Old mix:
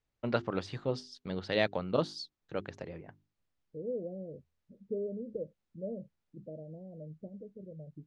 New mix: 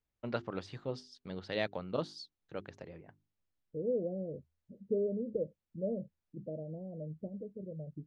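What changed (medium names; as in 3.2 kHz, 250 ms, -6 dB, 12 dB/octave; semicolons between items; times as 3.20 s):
first voice -5.5 dB; second voice +3.5 dB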